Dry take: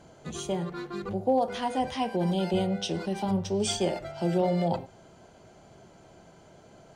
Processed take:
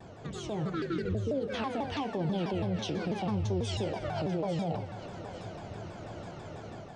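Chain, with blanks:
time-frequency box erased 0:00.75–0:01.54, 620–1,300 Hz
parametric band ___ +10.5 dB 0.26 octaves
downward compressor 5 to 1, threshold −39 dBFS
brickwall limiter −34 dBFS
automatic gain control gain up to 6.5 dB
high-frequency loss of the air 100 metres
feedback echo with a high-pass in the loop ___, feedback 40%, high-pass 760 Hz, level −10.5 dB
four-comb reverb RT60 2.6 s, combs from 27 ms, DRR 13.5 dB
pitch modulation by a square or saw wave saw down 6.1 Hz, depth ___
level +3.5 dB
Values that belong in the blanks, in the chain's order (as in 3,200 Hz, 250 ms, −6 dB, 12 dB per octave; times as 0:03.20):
100 Hz, 842 ms, 250 cents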